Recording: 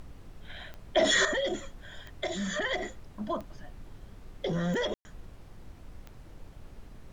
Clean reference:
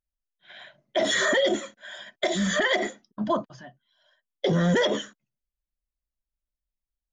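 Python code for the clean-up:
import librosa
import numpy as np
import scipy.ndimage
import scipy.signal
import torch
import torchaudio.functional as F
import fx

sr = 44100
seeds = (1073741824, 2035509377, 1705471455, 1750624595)

y = fx.fix_declick_ar(x, sr, threshold=10.0)
y = fx.fix_ambience(y, sr, seeds[0], print_start_s=6.07, print_end_s=6.57, start_s=4.94, end_s=5.05)
y = fx.noise_reduce(y, sr, print_start_s=6.07, print_end_s=6.57, reduce_db=30.0)
y = fx.gain(y, sr, db=fx.steps((0.0, 0.0), (1.25, 8.0)))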